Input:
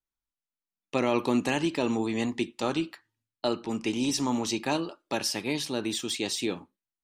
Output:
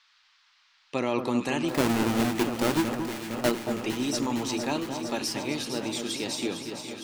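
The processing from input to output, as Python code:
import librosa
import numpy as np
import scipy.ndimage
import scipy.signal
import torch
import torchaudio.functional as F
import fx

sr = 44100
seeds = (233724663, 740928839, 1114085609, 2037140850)

y = fx.halfwave_hold(x, sr, at=(1.68, 3.5), fade=0.02)
y = fx.echo_alternate(y, sr, ms=229, hz=1500.0, feedback_pct=86, wet_db=-7.0)
y = fx.dmg_noise_band(y, sr, seeds[0], low_hz=980.0, high_hz=5000.0, level_db=-62.0)
y = F.gain(torch.from_numpy(y), -2.0).numpy()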